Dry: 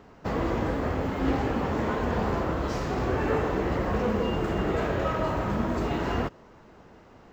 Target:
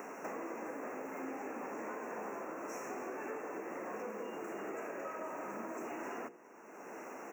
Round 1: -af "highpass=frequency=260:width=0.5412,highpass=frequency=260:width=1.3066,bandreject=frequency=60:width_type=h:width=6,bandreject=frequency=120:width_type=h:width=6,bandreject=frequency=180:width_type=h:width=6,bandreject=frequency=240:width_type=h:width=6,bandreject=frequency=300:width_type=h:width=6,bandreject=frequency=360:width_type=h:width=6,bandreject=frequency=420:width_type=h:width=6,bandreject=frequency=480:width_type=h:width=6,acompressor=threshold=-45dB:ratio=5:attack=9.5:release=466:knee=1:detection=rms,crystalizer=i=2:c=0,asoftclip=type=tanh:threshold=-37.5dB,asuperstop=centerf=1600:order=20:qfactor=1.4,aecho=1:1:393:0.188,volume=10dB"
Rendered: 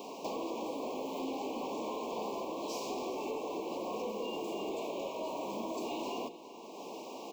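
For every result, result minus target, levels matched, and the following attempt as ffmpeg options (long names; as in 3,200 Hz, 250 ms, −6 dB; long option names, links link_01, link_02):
4,000 Hz band +13.5 dB; downward compressor: peak gain reduction −5.5 dB; echo-to-direct +6 dB
-af "highpass=frequency=260:width=0.5412,highpass=frequency=260:width=1.3066,bandreject=frequency=60:width_type=h:width=6,bandreject=frequency=120:width_type=h:width=6,bandreject=frequency=180:width_type=h:width=6,bandreject=frequency=240:width_type=h:width=6,bandreject=frequency=300:width_type=h:width=6,bandreject=frequency=360:width_type=h:width=6,bandreject=frequency=420:width_type=h:width=6,bandreject=frequency=480:width_type=h:width=6,acompressor=threshold=-45dB:ratio=5:attack=9.5:release=466:knee=1:detection=rms,crystalizer=i=2:c=0,asoftclip=type=tanh:threshold=-37.5dB,asuperstop=centerf=3900:order=20:qfactor=1.4,aecho=1:1:393:0.188,volume=10dB"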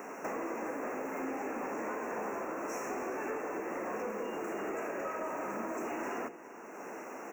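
downward compressor: peak gain reduction −5.5 dB; echo-to-direct +6 dB
-af "highpass=frequency=260:width=0.5412,highpass=frequency=260:width=1.3066,bandreject=frequency=60:width_type=h:width=6,bandreject=frequency=120:width_type=h:width=6,bandreject=frequency=180:width_type=h:width=6,bandreject=frequency=240:width_type=h:width=6,bandreject=frequency=300:width_type=h:width=6,bandreject=frequency=360:width_type=h:width=6,bandreject=frequency=420:width_type=h:width=6,bandreject=frequency=480:width_type=h:width=6,acompressor=threshold=-52dB:ratio=5:attack=9.5:release=466:knee=1:detection=rms,crystalizer=i=2:c=0,asoftclip=type=tanh:threshold=-37.5dB,asuperstop=centerf=3900:order=20:qfactor=1.4,aecho=1:1:393:0.188,volume=10dB"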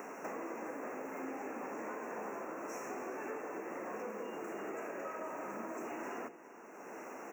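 echo-to-direct +6 dB
-af "highpass=frequency=260:width=0.5412,highpass=frequency=260:width=1.3066,bandreject=frequency=60:width_type=h:width=6,bandreject=frequency=120:width_type=h:width=6,bandreject=frequency=180:width_type=h:width=6,bandreject=frequency=240:width_type=h:width=6,bandreject=frequency=300:width_type=h:width=6,bandreject=frequency=360:width_type=h:width=6,bandreject=frequency=420:width_type=h:width=6,bandreject=frequency=480:width_type=h:width=6,acompressor=threshold=-52dB:ratio=5:attack=9.5:release=466:knee=1:detection=rms,crystalizer=i=2:c=0,asoftclip=type=tanh:threshold=-37.5dB,asuperstop=centerf=3900:order=20:qfactor=1.4,aecho=1:1:393:0.0944,volume=10dB"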